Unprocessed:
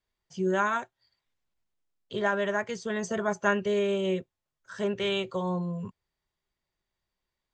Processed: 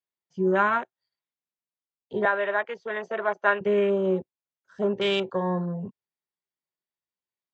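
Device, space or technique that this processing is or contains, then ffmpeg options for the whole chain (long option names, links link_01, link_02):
over-cleaned archive recording: -filter_complex "[0:a]highpass=160,lowpass=5600,afwtdn=0.0112,asettb=1/sr,asplit=3[link_01][link_02][link_03];[link_01]atrim=end=2.254[link_04];[link_02]atrim=start=2.25:end=3.61,asetpts=PTS-STARTPTS,afade=type=in:duration=0.004:curve=qsin,afade=type=out:start_time=1.356:duration=0.004:curve=qsin,acrossover=split=410 5100:gain=0.112 1 0.178[link_05][link_06][link_07];[link_05][link_06][link_07]amix=inputs=3:normalize=0[link_08];[link_03]atrim=start=3.606[link_09];[link_04][link_08]acrossfade=duration=0.004:curve1=hsin:curve2=qsin[link_10];[link_10][link_09]acrossfade=duration=0.004:curve1=qsin:curve2=hsin,volume=4.5dB"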